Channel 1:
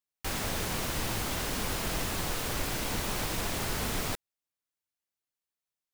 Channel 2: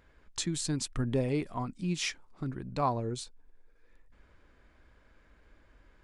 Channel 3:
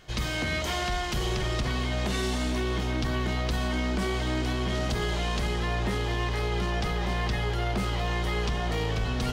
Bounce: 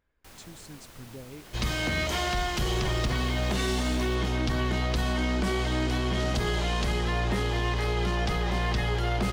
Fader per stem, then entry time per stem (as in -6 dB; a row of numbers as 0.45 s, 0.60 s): -17.0 dB, -14.5 dB, +1.0 dB; 0.00 s, 0.00 s, 1.45 s